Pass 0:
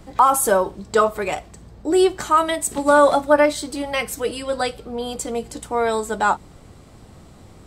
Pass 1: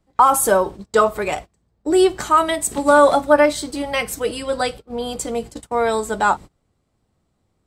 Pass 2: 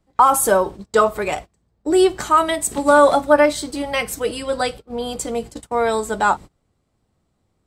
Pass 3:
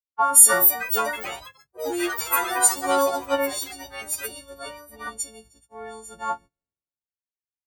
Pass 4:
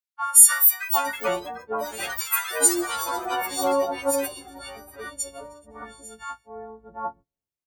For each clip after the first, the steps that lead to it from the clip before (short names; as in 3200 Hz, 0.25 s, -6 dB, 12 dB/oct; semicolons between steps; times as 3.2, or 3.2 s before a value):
gate -32 dBFS, range -25 dB; gain +1.5 dB
nothing audible
frequency quantiser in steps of 4 st; echoes that change speed 0.352 s, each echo +5 st, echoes 3; three-band expander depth 100%; gain -13.5 dB
bands offset in time highs, lows 0.75 s, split 1200 Hz